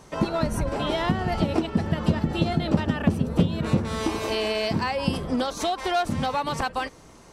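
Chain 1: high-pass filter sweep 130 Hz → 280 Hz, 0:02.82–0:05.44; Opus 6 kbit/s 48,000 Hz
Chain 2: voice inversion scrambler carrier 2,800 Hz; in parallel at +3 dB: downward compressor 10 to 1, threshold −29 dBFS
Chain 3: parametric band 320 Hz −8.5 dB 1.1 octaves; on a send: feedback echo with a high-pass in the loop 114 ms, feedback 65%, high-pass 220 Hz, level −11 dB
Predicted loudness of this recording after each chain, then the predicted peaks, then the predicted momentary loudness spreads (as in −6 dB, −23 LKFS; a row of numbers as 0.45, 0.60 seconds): −23.0, −18.5, −27.5 LKFS; −2.0, −4.0, −10.5 dBFS; 8, 3, 3 LU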